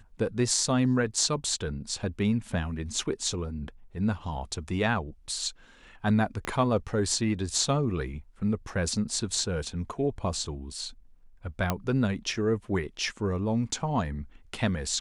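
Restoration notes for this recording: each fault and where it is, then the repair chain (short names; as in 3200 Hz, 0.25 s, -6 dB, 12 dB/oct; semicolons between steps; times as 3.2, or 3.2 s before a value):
6.45 pop -17 dBFS
11.7 pop -11 dBFS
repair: de-click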